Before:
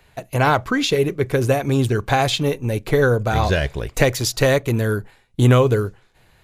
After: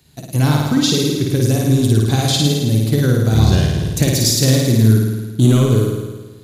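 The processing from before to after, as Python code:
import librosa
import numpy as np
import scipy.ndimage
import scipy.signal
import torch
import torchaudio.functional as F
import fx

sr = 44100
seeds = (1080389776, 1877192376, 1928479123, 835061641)

p1 = scipy.signal.sosfilt(scipy.signal.butter(2, 92.0, 'highpass', fs=sr, output='sos'), x)
p2 = fx.band_shelf(p1, sr, hz=1100.0, db=-15.0, octaves=3.0)
p3 = np.clip(p2, -10.0 ** (-15.0 / 20.0), 10.0 ** (-15.0 / 20.0))
p4 = p2 + F.gain(torch.from_numpy(p3), -6.5).numpy()
p5 = fx.room_flutter(p4, sr, wall_m=9.3, rt60_s=1.3)
y = F.gain(torch.from_numpy(p5), 2.5).numpy()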